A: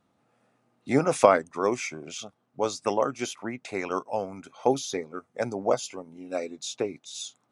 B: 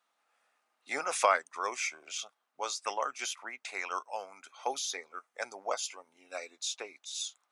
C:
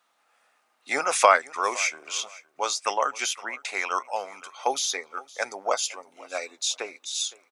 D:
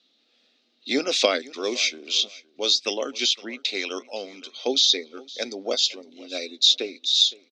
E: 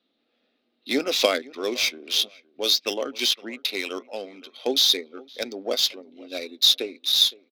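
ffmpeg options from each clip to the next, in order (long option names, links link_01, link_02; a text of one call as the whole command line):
ffmpeg -i in.wav -af "highpass=1100" out.wav
ffmpeg -i in.wav -af "aecho=1:1:513|1026:0.0891|0.0187,volume=8.5dB" out.wav
ffmpeg -i in.wav -af "firequalizer=gain_entry='entry(160,0);entry(230,14);entry(920,-19);entry(3800,14);entry(10000,-28)':delay=0.05:min_phase=1,volume=2dB" out.wav
ffmpeg -i in.wav -af "adynamicsmooth=sensitivity=4:basefreq=2200" out.wav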